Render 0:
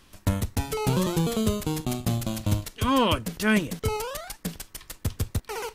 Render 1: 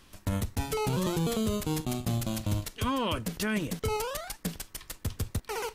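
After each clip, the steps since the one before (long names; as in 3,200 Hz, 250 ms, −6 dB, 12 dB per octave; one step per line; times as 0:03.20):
brickwall limiter −19 dBFS, peak gain reduction 8.5 dB
level −1 dB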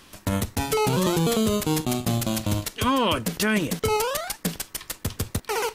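low-shelf EQ 97 Hz −11 dB
level +8.5 dB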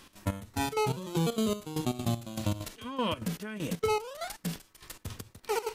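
harmonic and percussive parts rebalanced percussive −13 dB
downward compressor, threshold −24 dBFS, peak gain reduction 6 dB
gate pattern "x.xx...x" 196 BPM −12 dB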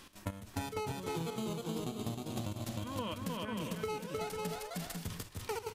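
on a send: bouncing-ball delay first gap 310 ms, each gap 0.6×, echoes 5
on the sum: downward compressor, threshold −34 dBFS, peak gain reduction 11 dB
level −1 dB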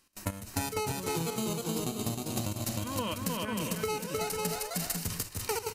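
notch filter 3,400 Hz, Q 6.7
noise gate with hold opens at −43 dBFS
high-shelf EQ 4,000 Hz +10 dB
level +4.5 dB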